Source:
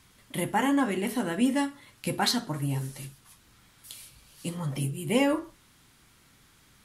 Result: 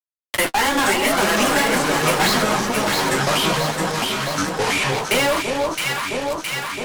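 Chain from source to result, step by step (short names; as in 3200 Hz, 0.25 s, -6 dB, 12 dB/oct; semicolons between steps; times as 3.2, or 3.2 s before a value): zero-crossing step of -30 dBFS; weighting filter A; gate -30 dBFS, range -23 dB; low shelf 390 Hz -9 dB; in parallel at -2 dB: compressor, threshold -39 dBFS, peak gain reduction 17.5 dB; on the sum: fuzz box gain 40 dB, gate -45 dBFS; flange 0.74 Hz, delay 4.1 ms, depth 9.1 ms, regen -25%; echoes that change speed 0.338 s, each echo -5 st, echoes 2; on a send: echo with dull and thin repeats by turns 0.333 s, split 1100 Hz, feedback 71%, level -4 dB; on the sum: three-band squash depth 70%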